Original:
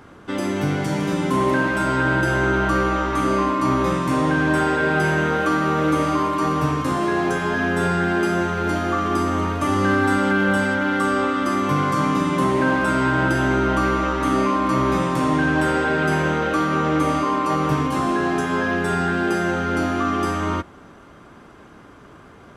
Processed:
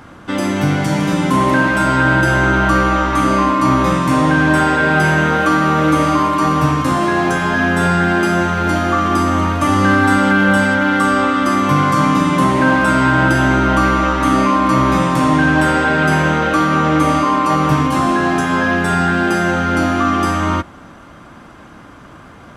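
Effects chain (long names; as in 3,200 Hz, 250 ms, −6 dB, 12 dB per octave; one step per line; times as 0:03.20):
parametric band 410 Hz −9.5 dB 0.3 octaves
level +7 dB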